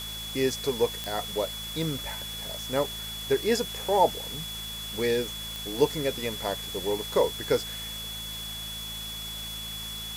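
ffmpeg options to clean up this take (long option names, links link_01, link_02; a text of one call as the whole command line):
ffmpeg -i in.wav -af "adeclick=threshold=4,bandreject=frequency=54.5:width_type=h:width=4,bandreject=frequency=109:width_type=h:width=4,bandreject=frequency=163.5:width_type=h:width=4,bandreject=frequency=218:width_type=h:width=4,bandreject=frequency=3400:width=30,afftdn=noise_reduction=30:noise_floor=-37" out.wav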